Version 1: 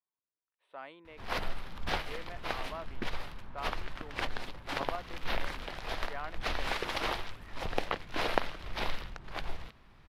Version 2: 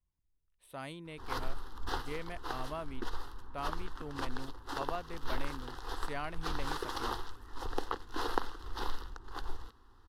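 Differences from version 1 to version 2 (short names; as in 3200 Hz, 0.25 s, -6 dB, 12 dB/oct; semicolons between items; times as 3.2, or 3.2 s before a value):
speech: remove BPF 500–2200 Hz; background: add fixed phaser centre 620 Hz, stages 6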